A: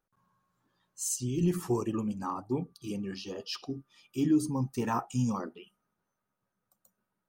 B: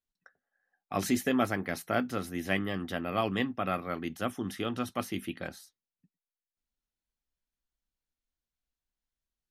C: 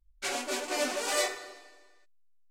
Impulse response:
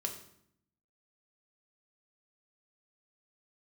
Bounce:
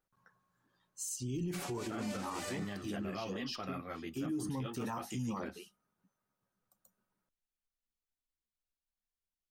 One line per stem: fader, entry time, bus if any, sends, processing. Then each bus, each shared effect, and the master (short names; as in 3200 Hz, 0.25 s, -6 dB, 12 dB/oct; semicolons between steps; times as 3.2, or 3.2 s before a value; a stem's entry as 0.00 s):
-2.0 dB, 0.00 s, no send, dry
-4.0 dB, 0.00 s, muted 0.78–1.87, no send, ensemble effect
-10.5 dB, 1.30 s, no send, dry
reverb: off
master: limiter -30.5 dBFS, peak gain reduction 11 dB